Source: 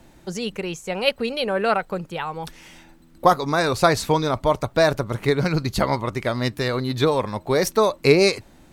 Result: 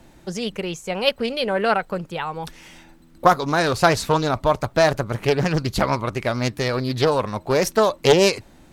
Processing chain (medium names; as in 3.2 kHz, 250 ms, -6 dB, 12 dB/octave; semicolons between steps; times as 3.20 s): loudspeaker Doppler distortion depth 0.45 ms; trim +1 dB